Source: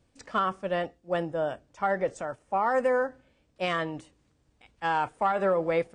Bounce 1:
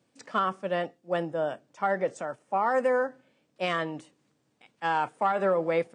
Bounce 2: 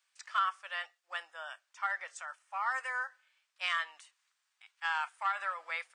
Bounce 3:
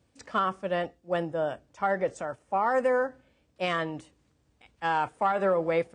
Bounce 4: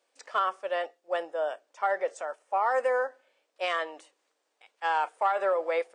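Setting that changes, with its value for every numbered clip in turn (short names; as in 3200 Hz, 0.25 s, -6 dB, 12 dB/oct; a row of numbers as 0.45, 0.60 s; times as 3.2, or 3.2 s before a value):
HPF, cutoff: 140, 1200, 45, 470 Hz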